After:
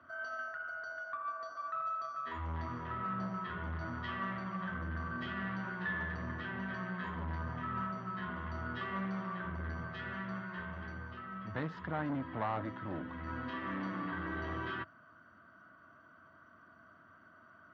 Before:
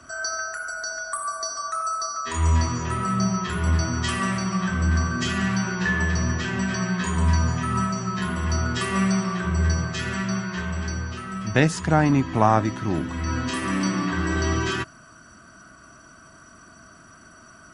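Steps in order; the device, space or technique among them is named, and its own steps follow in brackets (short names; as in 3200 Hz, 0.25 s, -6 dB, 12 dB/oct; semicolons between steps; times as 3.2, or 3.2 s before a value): guitar amplifier (tube stage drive 19 dB, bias 0.3; tone controls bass -8 dB, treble -14 dB; speaker cabinet 92–3500 Hz, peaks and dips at 92 Hz +8 dB, 390 Hz -6 dB, 750 Hz -3 dB, 2500 Hz -9 dB); gain -8 dB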